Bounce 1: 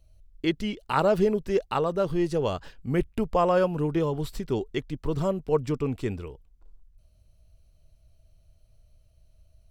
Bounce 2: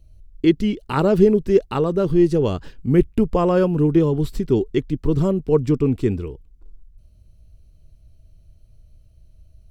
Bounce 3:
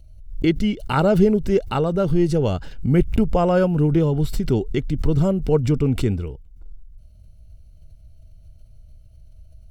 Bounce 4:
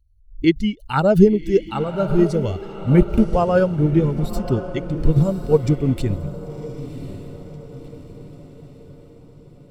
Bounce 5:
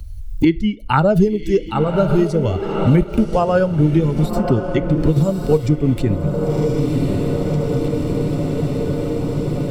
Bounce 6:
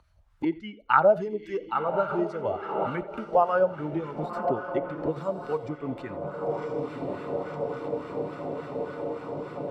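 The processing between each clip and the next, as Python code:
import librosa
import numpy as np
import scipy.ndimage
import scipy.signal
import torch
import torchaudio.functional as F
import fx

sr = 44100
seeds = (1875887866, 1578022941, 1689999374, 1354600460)

y1 = fx.low_shelf_res(x, sr, hz=480.0, db=7.0, q=1.5)
y1 = F.gain(torch.from_numpy(y1), 2.0).numpy()
y2 = y1 + 0.41 * np.pad(y1, (int(1.4 * sr / 1000.0), 0))[:len(y1)]
y2 = fx.pre_swell(y2, sr, db_per_s=100.0)
y3 = fx.bin_expand(y2, sr, power=1.5)
y3 = fx.echo_diffused(y3, sr, ms=1073, feedback_pct=51, wet_db=-9.5)
y3 = fx.upward_expand(y3, sr, threshold_db=-27.0, expansion=1.5)
y3 = F.gain(torch.from_numpy(y3), 6.0).numpy()
y4 = fx.rev_fdn(y3, sr, rt60_s=0.4, lf_ratio=0.85, hf_ratio=0.95, size_ms=20.0, drr_db=16.0)
y4 = fx.band_squash(y4, sr, depth_pct=100)
y4 = F.gain(torch.from_numpy(y4), 2.0).numpy()
y5 = fx.wah_lfo(y4, sr, hz=3.5, low_hz=700.0, high_hz=1400.0, q=2.1)
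y5 = y5 + 10.0 ** (-20.5 / 20.0) * np.pad(y5, (int(87 * sr / 1000.0), 0))[:len(y5)]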